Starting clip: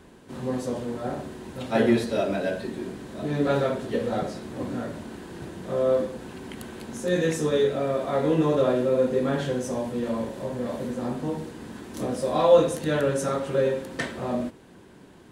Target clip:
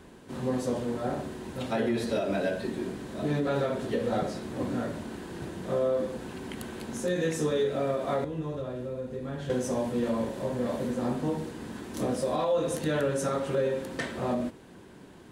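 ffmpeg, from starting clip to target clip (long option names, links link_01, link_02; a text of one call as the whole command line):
ffmpeg -i in.wav -filter_complex "[0:a]asettb=1/sr,asplit=3[link_01][link_02][link_03];[link_01]atrim=end=8.244[link_04];[link_02]atrim=start=8.24:end=9.5,asetpts=PTS-STARTPTS,afade=type=in:duration=0.004:curve=qsin,afade=type=out:start_time=1.256:duration=0.004:curve=qsin,acrossover=split=120[link_05][link_06];[link_06]acompressor=threshold=-39dB:ratio=3[link_07];[link_05][link_07]amix=inputs=2:normalize=0[link_08];[link_03]atrim=start=9.496[link_09];[link_04][link_08]acrossfade=duration=0.004:curve1=hsin:curve2=qsin[link_10];[link_10][link_09]acrossfade=duration=0.004:curve1=qsin:curve2=hsin,alimiter=limit=-19dB:level=0:latency=1:release=173" out.wav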